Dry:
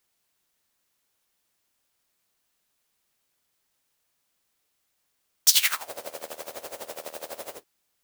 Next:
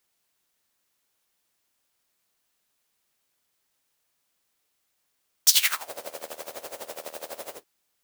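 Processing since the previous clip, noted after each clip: bass shelf 160 Hz -3 dB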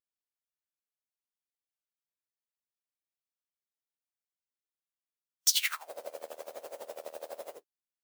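compression 1.5:1, threshold -33 dBFS, peak gain reduction 7.5 dB; spectral contrast expander 1.5:1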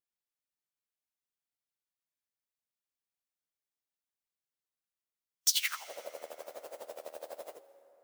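plate-style reverb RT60 3.7 s, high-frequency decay 0.5×, pre-delay 115 ms, DRR 16 dB; trim -2 dB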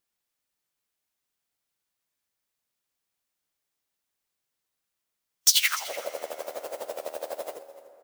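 in parallel at -4.5 dB: saturation -28 dBFS, distortion -7 dB; on the sum: delay 294 ms -18.5 dB; trim +6 dB

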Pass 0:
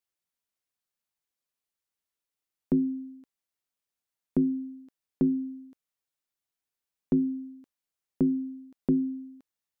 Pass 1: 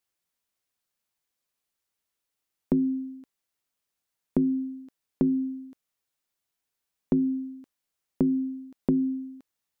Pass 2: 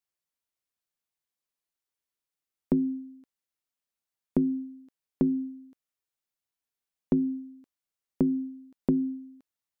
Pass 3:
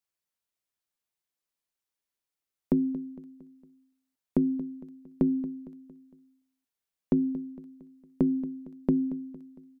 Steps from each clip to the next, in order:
compression, threshold -25 dBFS, peak gain reduction 5.5 dB; trim +5 dB
upward expansion 1.5:1, over -34 dBFS
feedback delay 229 ms, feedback 48%, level -15.5 dB

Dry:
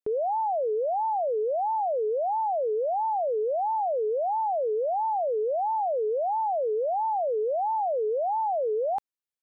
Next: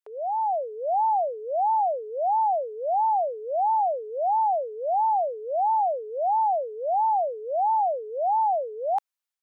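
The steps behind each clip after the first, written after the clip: inverse Chebyshev high-pass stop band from 190 Hz, stop band 60 dB; level rider gain up to 5 dB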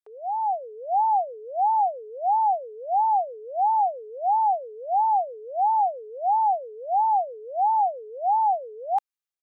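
comb 2.5 ms, depth 36%; upward expansion 1.5:1, over -32 dBFS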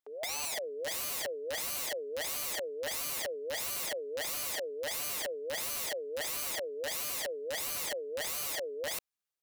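wow and flutter 19 cents; AM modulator 150 Hz, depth 15%; integer overflow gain 33 dB; trim +1.5 dB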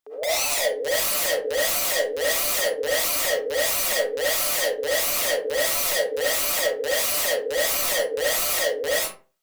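reverberation RT60 0.35 s, pre-delay 30 ms, DRR -7 dB; trim +5.5 dB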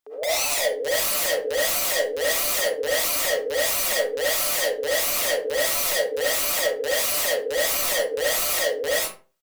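delay 79 ms -24 dB

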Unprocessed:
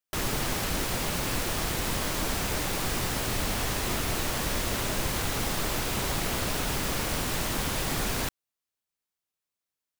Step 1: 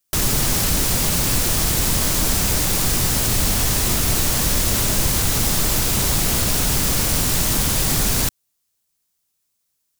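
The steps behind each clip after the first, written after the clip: tone controls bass +7 dB, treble +10 dB; in parallel at +3 dB: peak limiter -20.5 dBFS, peak gain reduction 10.5 dB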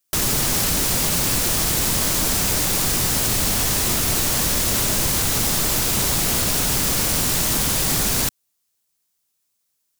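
bass shelf 120 Hz -7 dB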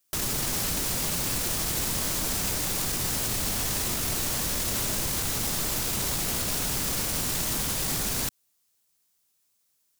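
peak limiter -20 dBFS, peak gain reduction 11.5 dB; trim +1 dB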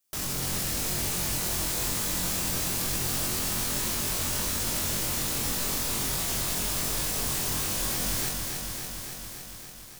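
on a send: flutter echo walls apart 3.8 m, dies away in 0.31 s; on the sum: bit-crushed delay 282 ms, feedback 80%, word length 8-bit, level -5 dB; trim -5 dB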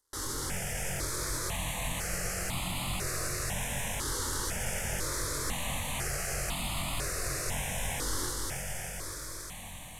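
CVSD coder 64 kbps; echo whose repeats swap between lows and highs 320 ms, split 1.3 kHz, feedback 82%, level -9 dB; stepped phaser 2 Hz 680–1600 Hz

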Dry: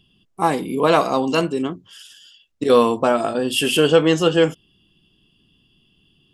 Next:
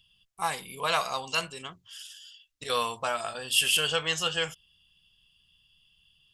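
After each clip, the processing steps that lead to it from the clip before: amplifier tone stack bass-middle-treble 10-0-10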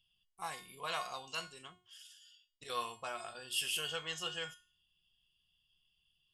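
feedback comb 360 Hz, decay 0.38 s, harmonics all, mix 80%

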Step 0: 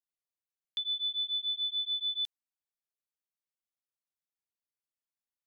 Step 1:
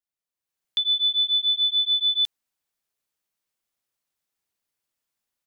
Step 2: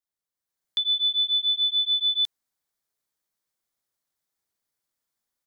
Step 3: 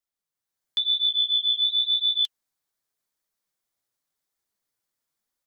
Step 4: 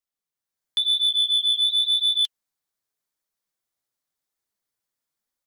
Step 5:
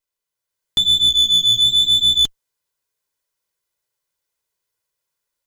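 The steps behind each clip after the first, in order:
level rider gain up to 11 dB
peaking EQ 2.7 kHz -7.5 dB 0.36 oct
flange 0.92 Hz, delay 1.4 ms, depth 9.3 ms, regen +57%; trim +4.5 dB
waveshaping leveller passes 1
comb filter that takes the minimum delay 2 ms; trim +6.5 dB

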